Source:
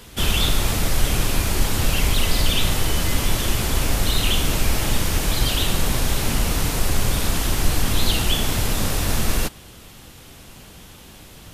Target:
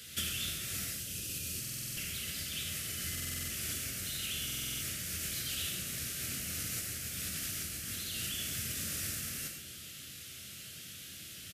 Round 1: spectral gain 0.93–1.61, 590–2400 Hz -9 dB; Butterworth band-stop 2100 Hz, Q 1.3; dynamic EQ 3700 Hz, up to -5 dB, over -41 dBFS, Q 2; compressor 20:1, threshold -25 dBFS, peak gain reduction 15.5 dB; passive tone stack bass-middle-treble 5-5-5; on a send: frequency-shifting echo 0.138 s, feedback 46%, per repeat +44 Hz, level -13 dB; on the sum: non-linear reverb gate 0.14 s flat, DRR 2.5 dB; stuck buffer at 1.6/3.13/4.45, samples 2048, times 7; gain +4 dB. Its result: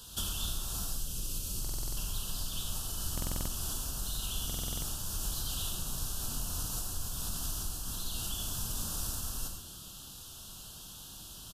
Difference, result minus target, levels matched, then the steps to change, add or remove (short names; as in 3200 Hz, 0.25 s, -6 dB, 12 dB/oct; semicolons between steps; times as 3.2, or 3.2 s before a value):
2000 Hz band -9.5 dB; 125 Hz band +3.5 dB
change: Butterworth band-stop 910 Hz, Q 1.3; add after compressor: HPF 77 Hz 24 dB/oct